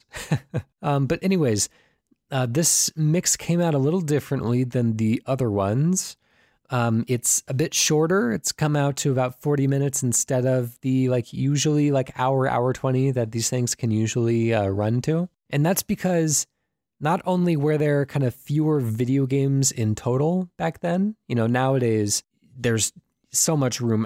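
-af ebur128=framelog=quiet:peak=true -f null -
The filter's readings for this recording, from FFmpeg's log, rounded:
Integrated loudness:
  I:         -22.5 LUFS
  Threshold: -32.7 LUFS
Loudness range:
  LRA:         1.7 LU
  Threshold: -42.6 LUFS
  LRA low:   -23.4 LUFS
  LRA high:  -21.7 LUFS
True peak:
  Peak:       -8.5 dBFS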